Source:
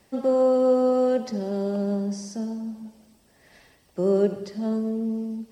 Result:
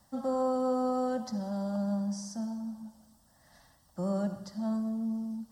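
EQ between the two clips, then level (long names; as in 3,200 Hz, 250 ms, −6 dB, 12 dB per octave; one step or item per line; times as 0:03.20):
phaser with its sweep stopped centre 1,000 Hz, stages 4
−1.5 dB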